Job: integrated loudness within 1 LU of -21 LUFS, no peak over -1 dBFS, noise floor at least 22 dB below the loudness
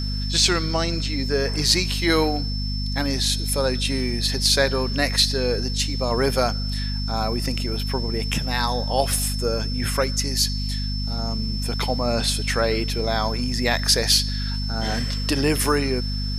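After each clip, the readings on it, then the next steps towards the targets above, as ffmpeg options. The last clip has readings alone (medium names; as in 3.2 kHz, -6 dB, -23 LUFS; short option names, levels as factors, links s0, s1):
hum 50 Hz; highest harmonic 250 Hz; hum level -24 dBFS; steady tone 5.3 kHz; tone level -31 dBFS; loudness -22.0 LUFS; peak level -4.0 dBFS; loudness target -21.0 LUFS
-> -af "bandreject=f=50:t=h:w=4,bandreject=f=100:t=h:w=4,bandreject=f=150:t=h:w=4,bandreject=f=200:t=h:w=4,bandreject=f=250:t=h:w=4"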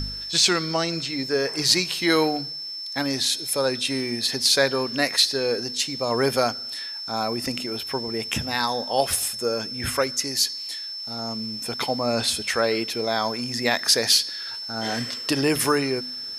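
hum not found; steady tone 5.3 kHz; tone level -31 dBFS
-> -af "bandreject=f=5300:w=30"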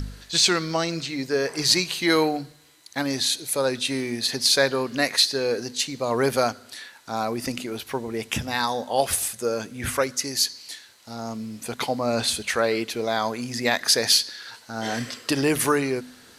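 steady tone not found; loudness -23.5 LUFS; peak level -4.5 dBFS; loudness target -21.0 LUFS
-> -af "volume=1.33"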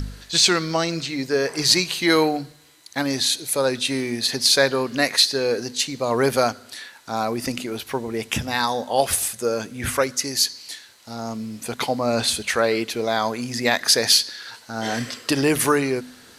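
loudness -21.0 LUFS; peak level -2.0 dBFS; noise floor -48 dBFS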